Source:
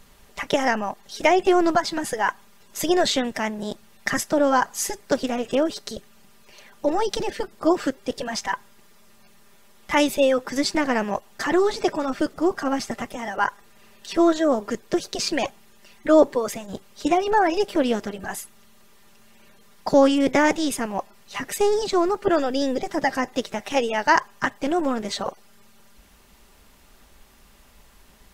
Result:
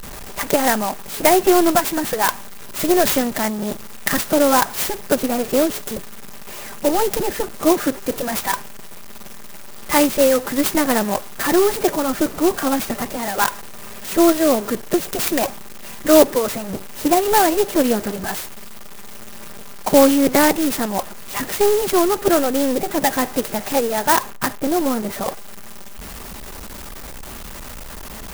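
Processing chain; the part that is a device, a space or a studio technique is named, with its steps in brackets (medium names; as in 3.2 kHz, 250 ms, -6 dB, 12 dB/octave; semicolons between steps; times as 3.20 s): 23.76–25.28 s: distance through air 420 m; early CD player with a faulty converter (jump at every zero crossing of -31.5 dBFS; sampling jitter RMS 0.077 ms); trim +3.5 dB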